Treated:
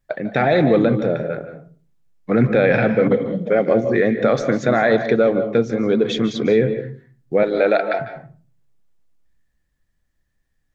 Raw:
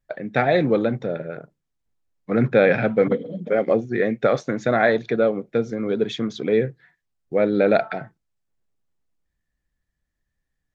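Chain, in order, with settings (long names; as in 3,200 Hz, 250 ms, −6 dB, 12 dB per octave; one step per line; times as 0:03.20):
0:07.43–0:08.00: high-pass filter 490 Hz 12 dB per octave
brickwall limiter −12 dBFS, peak gain reduction 6.5 dB
convolution reverb, pre-delay 146 ms, DRR 10 dB
level +5.5 dB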